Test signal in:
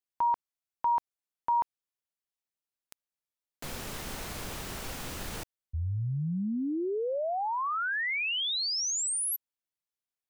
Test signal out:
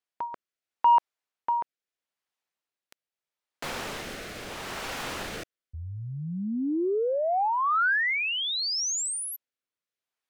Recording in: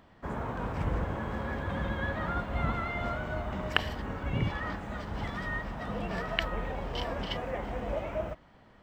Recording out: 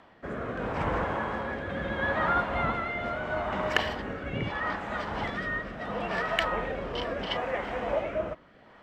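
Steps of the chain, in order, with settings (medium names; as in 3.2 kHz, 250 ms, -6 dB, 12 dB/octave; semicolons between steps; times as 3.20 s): rotary cabinet horn 0.75 Hz; overdrive pedal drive 17 dB, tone 2.3 kHz, clips at -6.5 dBFS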